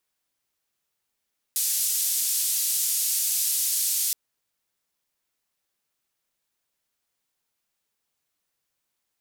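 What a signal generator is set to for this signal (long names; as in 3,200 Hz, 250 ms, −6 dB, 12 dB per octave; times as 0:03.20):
band-limited noise 5,700–14,000 Hz, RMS −25 dBFS 2.57 s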